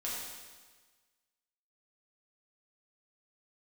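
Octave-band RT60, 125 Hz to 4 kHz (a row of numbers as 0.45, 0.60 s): 1.4, 1.4, 1.4, 1.4, 1.4, 1.4 s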